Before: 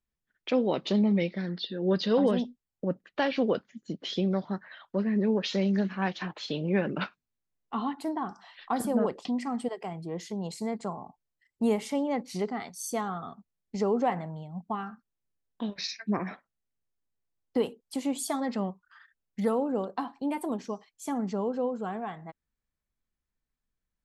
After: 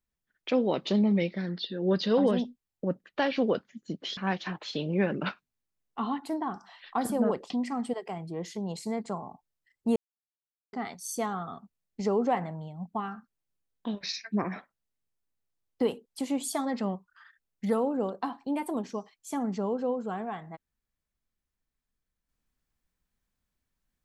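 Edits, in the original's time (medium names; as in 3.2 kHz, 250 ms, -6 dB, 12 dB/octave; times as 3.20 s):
4.17–5.92 s: delete
11.71–12.48 s: mute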